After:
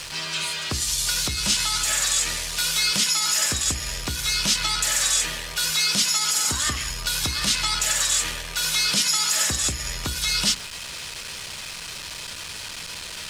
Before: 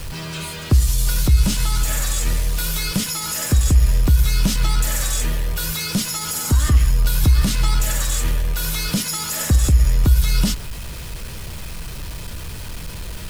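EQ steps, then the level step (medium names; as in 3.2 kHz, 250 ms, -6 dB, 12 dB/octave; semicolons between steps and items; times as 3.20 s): distance through air 93 m; tilt EQ +4.5 dB/octave; hum notches 60/120/180/240/300/360/420/480 Hz; 0.0 dB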